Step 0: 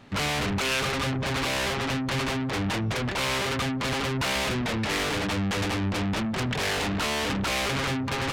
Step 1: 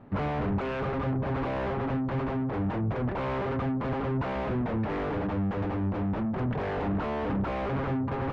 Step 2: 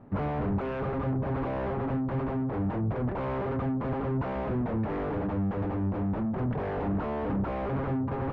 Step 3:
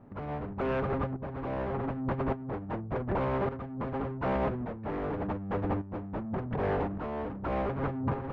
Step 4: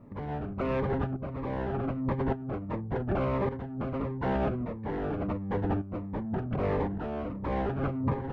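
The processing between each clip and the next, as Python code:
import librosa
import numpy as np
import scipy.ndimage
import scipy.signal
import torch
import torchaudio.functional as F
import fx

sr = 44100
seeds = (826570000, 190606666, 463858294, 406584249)

y1 = scipy.signal.sosfilt(scipy.signal.butter(2, 1000.0, 'lowpass', fs=sr, output='sos'), x)
y1 = fx.rider(y1, sr, range_db=10, speed_s=0.5)
y2 = fx.high_shelf(y1, sr, hz=2300.0, db=-11.5)
y3 = fx.over_compress(y2, sr, threshold_db=-32.0, ratio=-0.5)
y3 = fx.tremolo_shape(y3, sr, shape='saw_up', hz=0.86, depth_pct=65)
y3 = y3 * 10.0 ** (3.0 / 20.0)
y4 = fx.notch_cascade(y3, sr, direction='falling', hz=1.5)
y4 = y4 * 10.0 ** (2.5 / 20.0)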